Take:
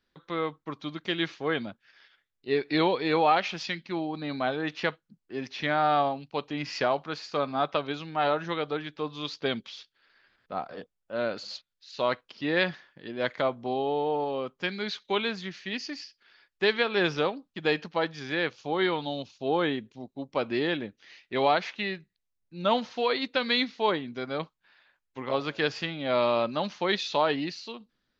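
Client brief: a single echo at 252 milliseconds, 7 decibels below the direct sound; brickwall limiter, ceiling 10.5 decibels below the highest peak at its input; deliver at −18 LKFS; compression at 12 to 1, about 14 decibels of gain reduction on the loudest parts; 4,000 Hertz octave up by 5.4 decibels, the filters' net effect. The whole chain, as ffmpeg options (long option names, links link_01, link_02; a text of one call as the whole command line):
ffmpeg -i in.wav -af "equalizer=frequency=4000:width_type=o:gain=6.5,acompressor=threshold=-32dB:ratio=12,alimiter=level_in=4.5dB:limit=-24dB:level=0:latency=1,volume=-4.5dB,aecho=1:1:252:0.447,volume=21.5dB" out.wav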